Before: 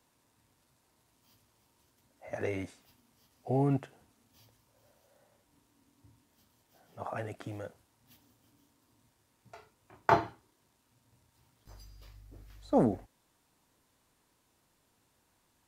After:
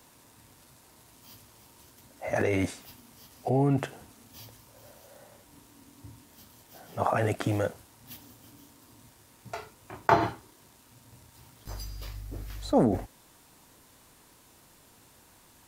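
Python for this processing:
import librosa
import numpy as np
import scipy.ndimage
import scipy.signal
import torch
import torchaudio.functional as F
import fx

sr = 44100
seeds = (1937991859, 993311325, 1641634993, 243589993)

p1 = fx.high_shelf(x, sr, hz=8300.0, db=4.5)
p2 = fx.over_compress(p1, sr, threshold_db=-39.0, ratio=-1.0)
p3 = p1 + F.gain(torch.from_numpy(p2), 2.0).numpy()
y = F.gain(torch.from_numpy(p3), 2.5).numpy()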